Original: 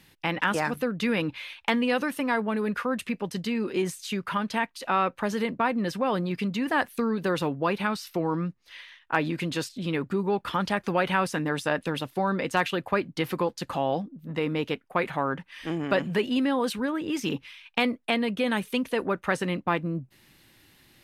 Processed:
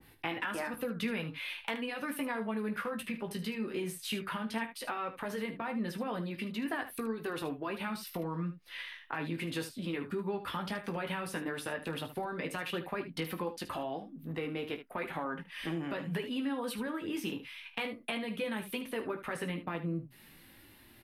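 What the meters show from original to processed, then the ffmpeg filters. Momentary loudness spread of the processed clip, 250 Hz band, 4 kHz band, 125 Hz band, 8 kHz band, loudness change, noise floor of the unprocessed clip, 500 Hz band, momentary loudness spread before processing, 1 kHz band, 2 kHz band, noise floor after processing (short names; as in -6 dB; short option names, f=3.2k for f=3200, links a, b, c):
4 LU, -9.0 dB, -7.5 dB, -8.0 dB, -6.0 dB, -9.5 dB, -62 dBFS, -10.0 dB, 6 LU, -11.5 dB, -9.0 dB, -58 dBFS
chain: -filter_complex "[0:a]aemphasis=mode=reproduction:type=75kf,acrossover=split=400|1100|3300[a][b][c][d];[d]aexciter=amount=7.1:drive=3.4:freq=9.1k[e];[a][b][c][e]amix=inputs=4:normalize=0,alimiter=limit=-18dB:level=0:latency=1:release=97,acompressor=threshold=-40dB:ratio=2.5,flanger=delay=2.6:depth=7.8:regen=-49:speed=0.14:shape=sinusoidal,aecho=1:1:18|49|75:0.398|0.141|0.266,adynamicequalizer=threshold=0.00141:dfrequency=1600:dqfactor=0.7:tfrequency=1600:tqfactor=0.7:attack=5:release=100:ratio=0.375:range=3:mode=boostabove:tftype=highshelf,volume=4.5dB"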